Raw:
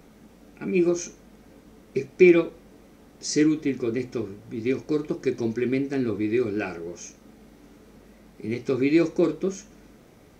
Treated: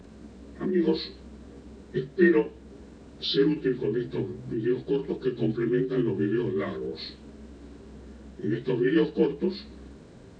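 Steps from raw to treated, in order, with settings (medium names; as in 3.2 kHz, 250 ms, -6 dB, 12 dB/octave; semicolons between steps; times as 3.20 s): frequency axis rescaled in octaves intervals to 84%; in parallel at +3 dB: compression, threshold -35 dBFS, peak gain reduction 21.5 dB; on the sum: dynamic bell 2.7 kHz, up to +7 dB, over -49 dBFS, Q 1.7; formant shift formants +2 st; bass shelf 280 Hz +10 dB; trim -6 dB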